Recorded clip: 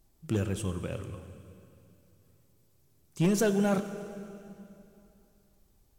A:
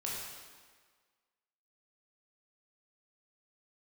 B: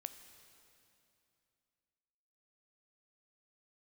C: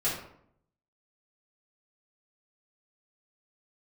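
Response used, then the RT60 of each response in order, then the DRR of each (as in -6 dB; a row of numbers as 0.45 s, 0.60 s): B; 1.6 s, 2.7 s, 0.70 s; -5.0 dB, 9.0 dB, -10.0 dB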